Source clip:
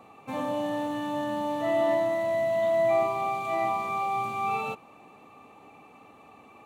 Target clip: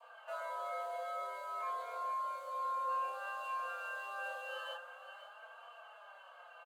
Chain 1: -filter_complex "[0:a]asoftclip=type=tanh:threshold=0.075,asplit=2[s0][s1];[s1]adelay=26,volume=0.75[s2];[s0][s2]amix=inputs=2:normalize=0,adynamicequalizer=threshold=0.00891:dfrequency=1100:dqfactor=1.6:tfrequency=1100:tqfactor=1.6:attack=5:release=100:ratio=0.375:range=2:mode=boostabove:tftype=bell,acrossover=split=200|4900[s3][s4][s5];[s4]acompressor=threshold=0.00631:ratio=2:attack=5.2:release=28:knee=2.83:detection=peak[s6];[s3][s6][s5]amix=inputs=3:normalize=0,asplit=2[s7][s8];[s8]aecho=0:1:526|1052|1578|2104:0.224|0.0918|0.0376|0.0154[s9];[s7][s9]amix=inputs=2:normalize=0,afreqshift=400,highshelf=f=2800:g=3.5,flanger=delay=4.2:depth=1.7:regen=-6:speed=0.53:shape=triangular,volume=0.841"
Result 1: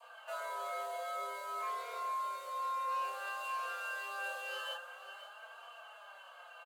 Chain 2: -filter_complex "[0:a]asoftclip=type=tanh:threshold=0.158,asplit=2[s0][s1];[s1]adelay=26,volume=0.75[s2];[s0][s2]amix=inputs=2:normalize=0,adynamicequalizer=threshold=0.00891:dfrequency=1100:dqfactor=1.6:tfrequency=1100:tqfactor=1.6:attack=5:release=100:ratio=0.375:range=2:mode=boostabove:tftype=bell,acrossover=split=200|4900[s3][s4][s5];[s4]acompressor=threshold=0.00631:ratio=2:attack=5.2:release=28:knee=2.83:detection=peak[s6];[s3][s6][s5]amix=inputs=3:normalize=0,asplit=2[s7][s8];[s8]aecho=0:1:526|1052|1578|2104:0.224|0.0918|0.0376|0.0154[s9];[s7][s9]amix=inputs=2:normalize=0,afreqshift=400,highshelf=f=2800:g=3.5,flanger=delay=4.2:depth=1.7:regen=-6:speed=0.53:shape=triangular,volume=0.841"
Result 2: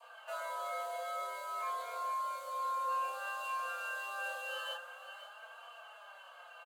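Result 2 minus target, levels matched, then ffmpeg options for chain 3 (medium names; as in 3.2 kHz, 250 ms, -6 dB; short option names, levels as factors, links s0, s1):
4 kHz band +4.0 dB
-filter_complex "[0:a]asoftclip=type=tanh:threshold=0.158,asplit=2[s0][s1];[s1]adelay=26,volume=0.75[s2];[s0][s2]amix=inputs=2:normalize=0,adynamicequalizer=threshold=0.00891:dfrequency=1100:dqfactor=1.6:tfrequency=1100:tqfactor=1.6:attack=5:release=100:ratio=0.375:range=2:mode=boostabove:tftype=bell,acrossover=split=200|4900[s3][s4][s5];[s4]acompressor=threshold=0.00631:ratio=2:attack=5.2:release=28:knee=2.83:detection=peak[s6];[s3][s6][s5]amix=inputs=3:normalize=0,asplit=2[s7][s8];[s8]aecho=0:1:526|1052|1578|2104:0.224|0.0918|0.0376|0.0154[s9];[s7][s9]amix=inputs=2:normalize=0,afreqshift=400,highshelf=f=2800:g=-7,flanger=delay=4.2:depth=1.7:regen=-6:speed=0.53:shape=triangular,volume=0.841"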